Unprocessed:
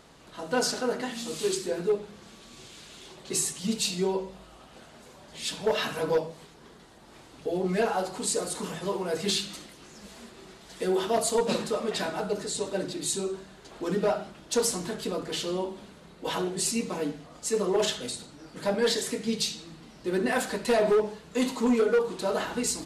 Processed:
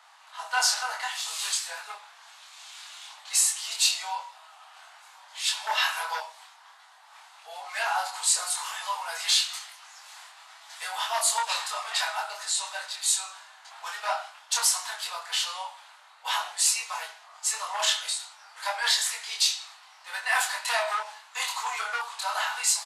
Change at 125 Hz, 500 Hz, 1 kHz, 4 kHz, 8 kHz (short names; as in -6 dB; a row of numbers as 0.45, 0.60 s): under -40 dB, -15.5 dB, +4.0 dB, +6.5 dB, +6.0 dB